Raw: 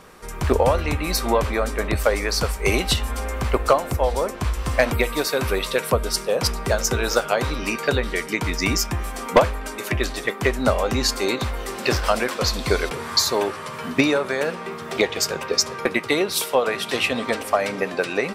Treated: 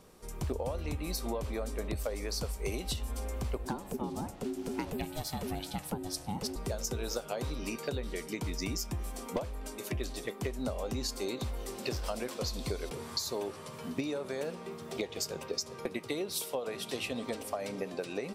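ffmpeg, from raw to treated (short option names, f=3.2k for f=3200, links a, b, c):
-filter_complex "[0:a]asettb=1/sr,asplit=3[a][b][c];[a]atrim=end=3.654[d];[b]atrim=start=3.65:end=6.56,asetpts=PTS-STARTPTS,afade=t=in:d=0.004:c=qsin,afade=t=out:st=2.906:d=0.004:c=qsin,aeval=exprs='val(0)*sin(2*PI*320*n/s)':c=same[e];[c]atrim=start=6.556[f];[d][e]acrossfade=d=0.004:c1=hsin:c2=qsin[g];[g][f]acrossfade=d=0.004:c1=qsin:c2=hsin,equalizer=f=1.6k:t=o:w=1.8:g=-11,acompressor=threshold=-23dB:ratio=6,volume=-8dB"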